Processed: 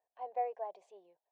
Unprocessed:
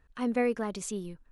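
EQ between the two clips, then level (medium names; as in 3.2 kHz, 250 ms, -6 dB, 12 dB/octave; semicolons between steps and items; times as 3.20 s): dynamic bell 1.1 kHz, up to +5 dB, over -47 dBFS, Q 1.2; ladder band-pass 790 Hz, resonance 65%; static phaser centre 550 Hz, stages 4; +2.5 dB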